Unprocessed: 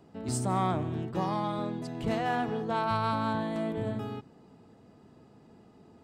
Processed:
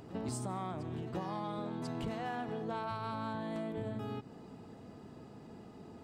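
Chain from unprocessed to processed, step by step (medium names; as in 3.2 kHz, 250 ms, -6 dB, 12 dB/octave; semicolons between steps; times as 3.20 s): compression 12:1, threshold -40 dBFS, peak gain reduction 16.5 dB; reverse echo 1043 ms -13 dB; trim +4.5 dB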